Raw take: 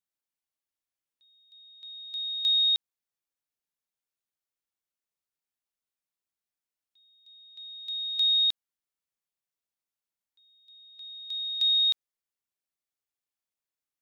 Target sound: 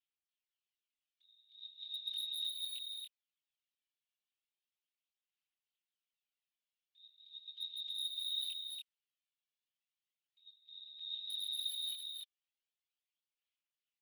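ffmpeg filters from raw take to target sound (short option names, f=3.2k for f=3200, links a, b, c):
-filter_complex "[0:a]aphaser=in_gain=1:out_gain=1:delay=1.8:decay=0.57:speed=0.37:type=sinusoidal,bandpass=f=3k:t=q:w=3:csg=0,asoftclip=type=hard:threshold=-34dB,asplit=2[a][b];[b]adelay=23,volume=-4dB[c];[a][c]amix=inputs=2:normalize=0,acompressor=threshold=-37dB:ratio=20,aeval=exprs='0.0133*(abs(mod(val(0)/0.0133+3,4)-2)-1)':c=same,asplit=2[d][e];[e]aecho=0:1:286:0.596[f];[d][f]amix=inputs=2:normalize=0,afftfilt=real='hypot(re,im)*cos(2*PI*random(0))':imag='hypot(re,im)*sin(2*PI*random(1))':win_size=512:overlap=0.75,volume=6.5dB"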